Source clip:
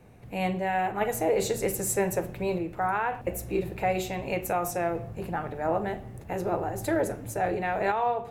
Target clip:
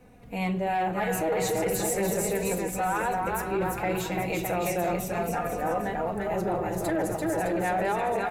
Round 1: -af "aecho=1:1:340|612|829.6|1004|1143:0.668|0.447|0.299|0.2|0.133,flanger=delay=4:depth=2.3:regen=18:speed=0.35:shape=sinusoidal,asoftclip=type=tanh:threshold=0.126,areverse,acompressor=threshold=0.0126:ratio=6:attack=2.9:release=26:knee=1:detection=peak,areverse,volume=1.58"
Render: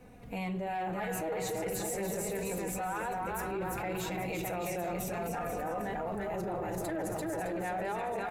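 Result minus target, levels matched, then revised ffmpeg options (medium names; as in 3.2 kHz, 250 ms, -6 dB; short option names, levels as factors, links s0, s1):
compression: peak gain reduction +8.5 dB
-af "aecho=1:1:340|612|829.6|1004|1143:0.668|0.447|0.299|0.2|0.133,flanger=delay=4:depth=2.3:regen=18:speed=0.35:shape=sinusoidal,asoftclip=type=tanh:threshold=0.126,areverse,acompressor=threshold=0.0398:ratio=6:attack=2.9:release=26:knee=1:detection=peak,areverse,volume=1.58"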